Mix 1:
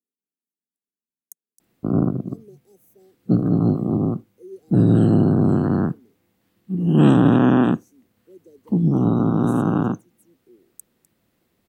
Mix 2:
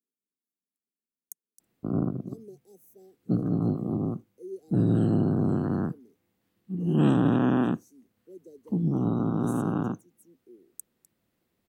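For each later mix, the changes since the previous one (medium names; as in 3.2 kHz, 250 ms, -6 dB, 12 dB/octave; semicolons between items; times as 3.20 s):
background -8.0 dB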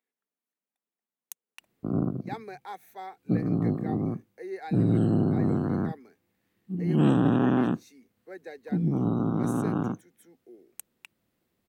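speech: remove inverse Chebyshev band-stop 1.1–2.5 kHz, stop band 70 dB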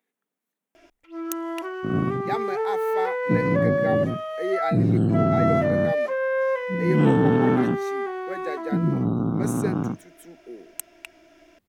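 speech +9.0 dB; first sound: unmuted; master: add bass shelf 240 Hz +4.5 dB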